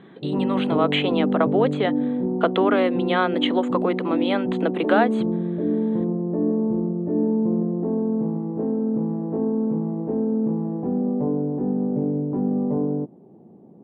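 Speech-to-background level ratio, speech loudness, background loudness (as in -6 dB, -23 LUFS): 0.0 dB, -24.0 LUFS, -24.0 LUFS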